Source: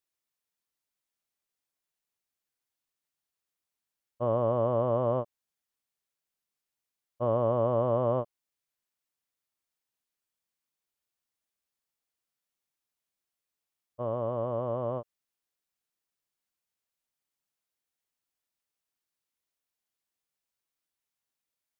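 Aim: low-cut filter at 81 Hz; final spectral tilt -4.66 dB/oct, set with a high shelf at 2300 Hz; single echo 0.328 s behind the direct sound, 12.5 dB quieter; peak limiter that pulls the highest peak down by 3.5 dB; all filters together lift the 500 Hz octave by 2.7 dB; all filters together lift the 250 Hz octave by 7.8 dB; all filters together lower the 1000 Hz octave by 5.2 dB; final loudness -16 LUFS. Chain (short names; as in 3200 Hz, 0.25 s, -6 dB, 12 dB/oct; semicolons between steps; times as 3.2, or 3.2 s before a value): HPF 81 Hz; bell 250 Hz +8.5 dB; bell 500 Hz +4.5 dB; bell 1000 Hz -8 dB; high shelf 2300 Hz -8.5 dB; limiter -17 dBFS; echo 0.328 s -12.5 dB; gain +12.5 dB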